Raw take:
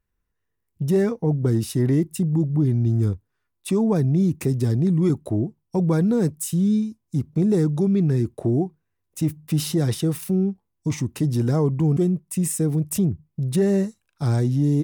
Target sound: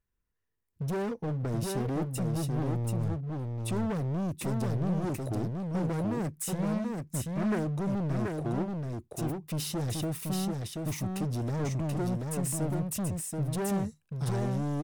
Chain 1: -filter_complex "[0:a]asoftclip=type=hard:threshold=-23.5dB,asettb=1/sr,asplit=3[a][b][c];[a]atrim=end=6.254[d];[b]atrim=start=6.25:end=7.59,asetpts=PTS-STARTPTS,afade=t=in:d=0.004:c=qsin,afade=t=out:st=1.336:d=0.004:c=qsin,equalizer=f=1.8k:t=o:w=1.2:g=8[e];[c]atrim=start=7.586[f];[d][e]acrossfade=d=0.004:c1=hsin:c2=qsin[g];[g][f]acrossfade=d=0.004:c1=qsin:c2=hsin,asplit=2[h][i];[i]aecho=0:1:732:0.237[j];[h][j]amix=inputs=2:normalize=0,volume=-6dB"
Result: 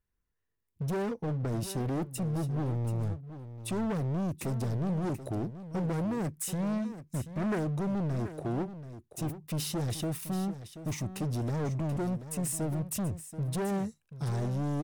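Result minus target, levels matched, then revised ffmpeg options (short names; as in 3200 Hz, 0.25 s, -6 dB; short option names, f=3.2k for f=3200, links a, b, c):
echo-to-direct -9 dB
-filter_complex "[0:a]asoftclip=type=hard:threshold=-23.5dB,asettb=1/sr,asplit=3[a][b][c];[a]atrim=end=6.254[d];[b]atrim=start=6.25:end=7.59,asetpts=PTS-STARTPTS,afade=t=in:d=0.004:c=qsin,afade=t=out:st=1.336:d=0.004:c=qsin,equalizer=f=1.8k:t=o:w=1.2:g=8[e];[c]atrim=start=7.586[f];[d][e]acrossfade=d=0.004:c1=hsin:c2=qsin[g];[g][f]acrossfade=d=0.004:c1=qsin:c2=hsin,asplit=2[h][i];[i]aecho=0:1:732:0.668[j];[h][j]amix=inputs=2:normalize=0,volume=-6dB"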